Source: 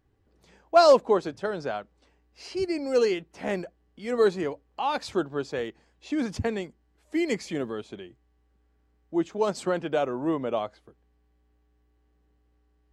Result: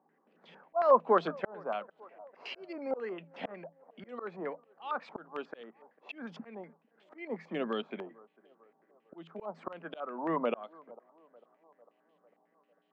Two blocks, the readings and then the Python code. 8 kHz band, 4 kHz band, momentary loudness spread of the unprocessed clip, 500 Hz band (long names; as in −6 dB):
below −30 dB, −12.5 dB, 15 LU, −9.5 dB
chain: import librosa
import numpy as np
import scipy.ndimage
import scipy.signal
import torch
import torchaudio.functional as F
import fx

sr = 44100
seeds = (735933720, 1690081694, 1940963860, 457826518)

p1 = fx.dynamic_eq(x, sr, hz=1200.0, q=4.0, threshold_db=-46.0, ratio=4.0, max_db=6)
p2 = scipy.signal.sosfilt(scipy.signal.cheby1(6, 6, 160.0, 'highpass', fs=sr, output='sos'), p1)
p3 = fx.auto_swell(p2, sr, attack_ms=667.0)
p4 = p3 + fx.echo_banded(p3, sr, ms=449, feedback_pct=63, hz=650.0, wet_db=-22.5, dry=0)
p5 = fx.filter_held_lowpass(p4, sr, hz=11.0, low_hz=910.0, high_hz=3200.0)
y = p5 * librosa.db_to_amplitude(2.5)